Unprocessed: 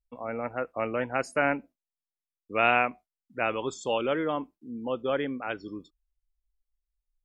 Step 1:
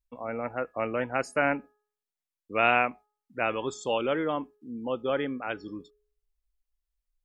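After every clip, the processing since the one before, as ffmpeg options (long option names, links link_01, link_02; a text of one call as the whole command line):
ffmpeg -i in.wav -af "bandreject=frequency=419.4:width_type=h:width=4,bandreject=frequency=838.8:width_type=h:width=4,bandreject=frequency=1258.2:width_type=h:width=4,bandreject=frequency=1677.6:width_type=h:width=4" out.wav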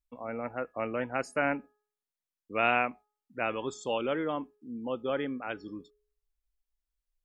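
ffmpeg -i in.wav -af "equalizer=frequency=240:width_type=o:width=0.77:gain=2,volume=-3.5dB" out.wav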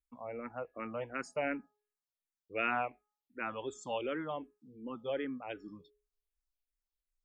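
ffmpeg -i in.wav -filter_complex "[0:a]asplit=2[link_01][link_02];[link_02]afreqshift=-2.7[link_03];[link_01][link_03]amix=inputs=2:normalize=1,volume=-3.5dB" out.wav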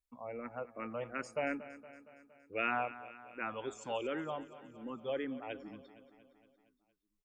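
ffmpeg -i in.wav -af "aecho=1:1:232|464|696|928|1160|1392:0.168|0.101|0.0604|0.0363|0.0218|0.0131,volume=-1dB" out.wav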